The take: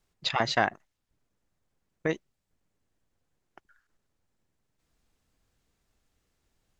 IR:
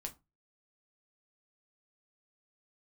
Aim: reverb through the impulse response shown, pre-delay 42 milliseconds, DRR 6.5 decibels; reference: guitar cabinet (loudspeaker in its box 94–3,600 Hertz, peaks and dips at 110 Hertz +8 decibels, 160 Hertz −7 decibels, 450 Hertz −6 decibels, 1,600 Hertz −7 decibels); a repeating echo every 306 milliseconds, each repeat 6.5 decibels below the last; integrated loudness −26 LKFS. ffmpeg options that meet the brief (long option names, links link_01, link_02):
-filter_complex "[0:a]aecho=1:1:306|612|918|1224|1530|1836:0.473|0.222|0.105|0.0491|0.0231|0.0109,asplit=2[link_01][link_02];[1:a]atrim=start_sample=2205,adelay=42[link_03];[link_02][link_03]afir=irnorm=-1:irlink=0,volume=-4dB[link_04];[link_01][link_04]amix=inputs=2:normalize=0,highpass=94,equalizer=frequency=110:width_type=q:width=4:gain=8,equalizer=frequency=160:width_type=q:width=4:gain=-7,equalizer=frequency=450:width_type=q:width=4:gain=-6,equalizer=frequency=1600:width_type=q:width=4:gain=-7,lowpass=frequency=3600:width=0.5412,lowpass=frequency=3600:width=1.3066,volume=6.5dB"